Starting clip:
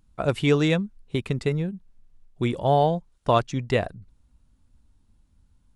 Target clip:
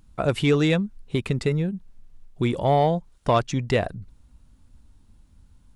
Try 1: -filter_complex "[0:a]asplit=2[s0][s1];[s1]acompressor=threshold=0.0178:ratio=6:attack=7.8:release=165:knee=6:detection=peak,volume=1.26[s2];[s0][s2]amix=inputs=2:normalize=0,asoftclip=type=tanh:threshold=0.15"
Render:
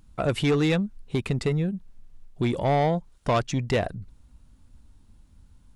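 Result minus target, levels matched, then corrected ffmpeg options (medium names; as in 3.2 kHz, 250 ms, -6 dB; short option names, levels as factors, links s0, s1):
saturation: distortion +10 dB
-filter_complex "[0:a]asplit=2[s0][s1];[s1]acompressor=threshold=0.0178:ratio=6:attack=7.8:release=165:knee=6:detection=peak,volume=1.26[s2];[s0][s2]amix=inputs=2:normalize=0,asoftclip=type=tanh:threshold=0.355"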